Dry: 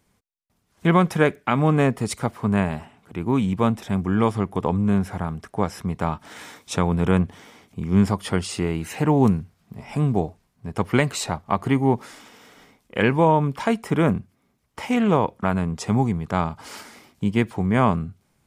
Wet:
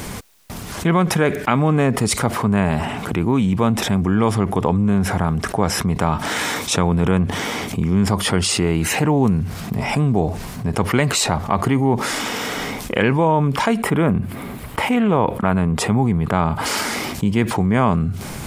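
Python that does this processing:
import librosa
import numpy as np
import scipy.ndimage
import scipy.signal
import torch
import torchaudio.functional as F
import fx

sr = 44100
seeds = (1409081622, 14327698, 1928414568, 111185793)

y = fx.peak_eq(x, sr, hz=5900.0, db=-11.0, octaves=0.76, at=(13.77, 16.66))
y = fx.env_flatten(y, sr, amount_pct=70)
y = y * librosa.db_to_amplitude(-1.0)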